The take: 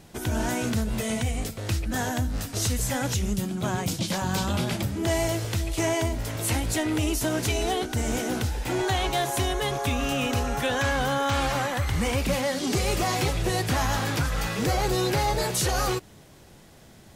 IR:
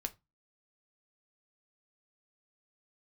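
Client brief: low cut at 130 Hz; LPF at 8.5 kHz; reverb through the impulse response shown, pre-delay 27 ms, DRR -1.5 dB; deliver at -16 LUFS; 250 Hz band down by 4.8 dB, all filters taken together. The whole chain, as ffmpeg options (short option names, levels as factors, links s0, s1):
-filter_complex "[0:a]highpass=130,lowpass=8500,equalizer=f=250:t=o:g=-6,asplit=2[s0][s1];[1:a]atrim=start_sample=2205,adelay=27[s2];[s1][s2]afir=irnorm=-1:irlink=0,volume=1.33[s3];[s0][s3]amix=inputs=2:normalize=0,volume=2.66"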